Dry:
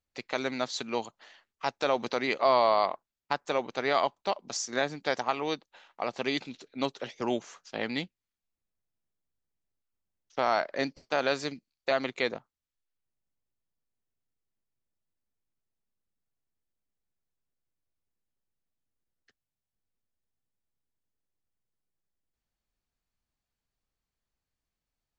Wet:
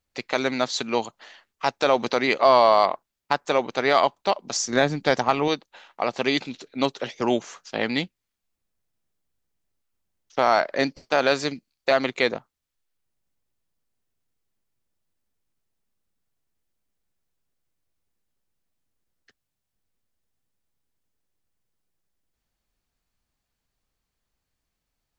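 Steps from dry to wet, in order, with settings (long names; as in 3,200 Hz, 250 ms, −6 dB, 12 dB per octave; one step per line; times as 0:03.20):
0:04.55–0:05.48: low-shelf EQ 220 Hz +11 dB
in parallel at −8 dB: gain into a clipping stage and back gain 16.5 dB
on the sum: level +4.5 dB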